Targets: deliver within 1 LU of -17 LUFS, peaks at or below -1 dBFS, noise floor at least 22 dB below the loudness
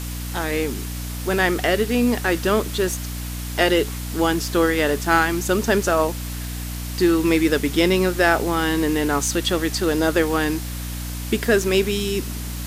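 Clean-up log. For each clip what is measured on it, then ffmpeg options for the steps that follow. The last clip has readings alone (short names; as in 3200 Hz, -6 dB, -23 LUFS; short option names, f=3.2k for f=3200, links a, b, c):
hum 60 Hz; harmonics up to 300 Hz; hum level -27 dBFS; noise floor -29 dBFS; noise floor target -43 dBFS; loudness -21.0 LUFS; peak -3.0 dBFS; loudness target -17.0 LUFS
-> -af "bandreject=f=60:t=h:w=6,bandreject=f=120:t=h:w=6,bandreject=f=180:t=h:w=6,bandreject=f=240:t=h:w=6,bandreject=f=300:t=h:w=6"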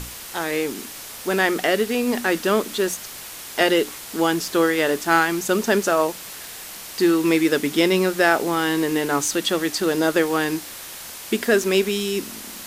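hum none; noise floor -37 dBFS; noise floor target -43 dBFS
-> -af "afftdn=nr=6:nf=-37"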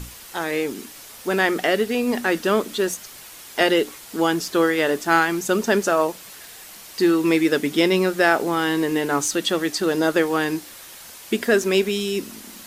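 noise floor -42 dBFS; noise floor target -43 dBFS
-> -af "afftdn=nr=6:nf=-42"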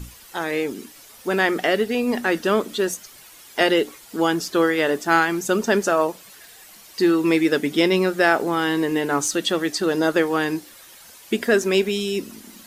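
noise floor -46 dBFS; loudness -21.0 LUFS; peak -4.0 dBFS; loudness target -17.0 LUFS
-> -af "volume=4dB,alimiter=limit=-1dB:level=0:latency=1"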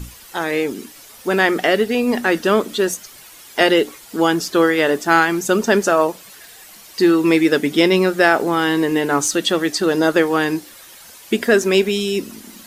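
loudness -17.0 LUFS; peak -1.0 dBFS; noise floor -42 dBFS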